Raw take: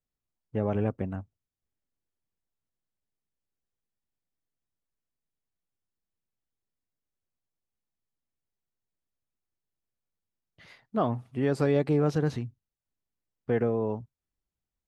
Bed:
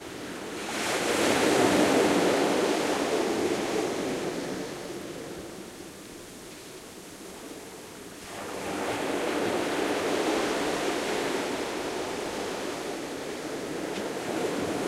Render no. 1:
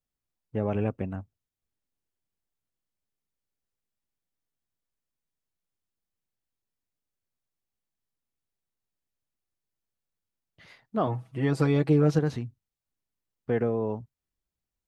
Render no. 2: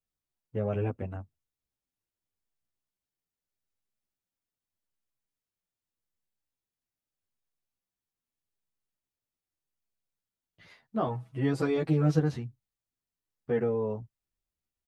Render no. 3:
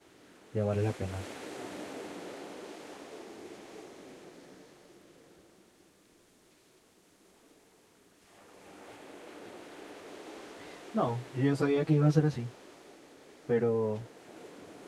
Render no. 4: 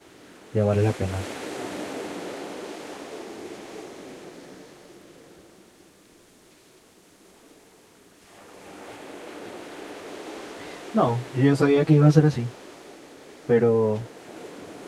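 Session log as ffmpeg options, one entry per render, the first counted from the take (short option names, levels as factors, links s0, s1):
-filter_complex "[0:a]asettb=1/sr,asplit=3[s0][s1][s2];[s0]atrim=end=0.624[s3];[s1]atrim=start=0.62:end=1.12,asetpts=PTS-STARTPTS,afade=t=in:d=0.004:c=qsin,afade=t=out:st=0.496:d=0.004:c=qsin,equalizer=f=2600:t=o:w=0.21:g=8[s4];[s2]atrim=start=1.116[s5];[s3][s4]acrossfade=d=0.004:c1=hsin:c2=qsin[s6];[s6][s5]acrossfade=d=0.004:c1=qsin:c2=hsin,asettb=1/sr,asplit=3[s7][s8][s9];[s7]atrim=end=11.064[s10];[s8]atrim=start=11.06:end=12.19,asetpts=PTS-STARTPTS,afade=t=in:d=0.004:c=qsin,afade=t=out:st=1.126:d=0.004:c=qsin,aecho=1:1:6.2:0.79,atrim=end_sample=49833[s11];[s9]atrim=start=12.186[s12];[s10][s11]acrossfade=d=0.004:c1=hsin:c2=qsin[s13];[s13][s12]acrossfade=d=0.004:c1=qsin:c2=hsin"
-filter_complex "[0:a]asplit=2[s0][s1];[s1]adelay=10.2,afreqshift=-0.82[s2];[s0][s2]amix=inputs=2:normalize=1"
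-filter_complex "[1:a]volume=0.1[s0];[0:a][s0]amix=inputs=2:normalize=0"
-af "volume=2.82"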